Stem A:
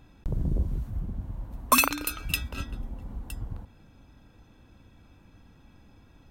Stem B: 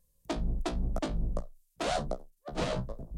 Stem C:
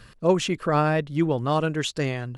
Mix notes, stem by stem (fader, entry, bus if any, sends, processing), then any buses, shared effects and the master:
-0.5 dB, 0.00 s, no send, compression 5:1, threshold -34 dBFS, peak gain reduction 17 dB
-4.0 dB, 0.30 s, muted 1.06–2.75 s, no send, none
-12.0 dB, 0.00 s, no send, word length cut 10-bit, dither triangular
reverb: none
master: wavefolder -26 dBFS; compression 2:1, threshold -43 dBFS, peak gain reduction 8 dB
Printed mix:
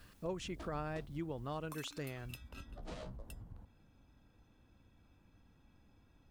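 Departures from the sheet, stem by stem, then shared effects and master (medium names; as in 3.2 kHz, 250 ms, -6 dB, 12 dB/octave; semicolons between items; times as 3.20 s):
stem A -0.5 dB -> -11.5 dB; stem B -4.0 dB -> -14.0 dB; master: missing wavefolder -26 dBFS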